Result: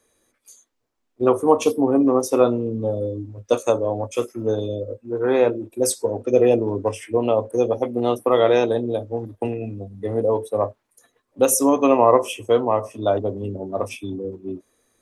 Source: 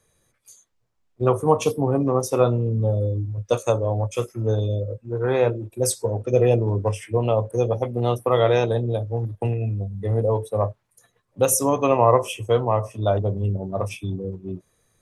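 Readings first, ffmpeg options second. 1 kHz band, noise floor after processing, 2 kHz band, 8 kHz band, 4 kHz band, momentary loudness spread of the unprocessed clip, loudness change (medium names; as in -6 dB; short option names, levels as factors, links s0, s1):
+1.5 dB, -73 dBFS, +1.0 dB, +1.0 dB, +1.0 dB, 9 LU, +1.5 dB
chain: -af "lowshelf=f=200:t=q:w=3:g=-7.5,volume=1.12"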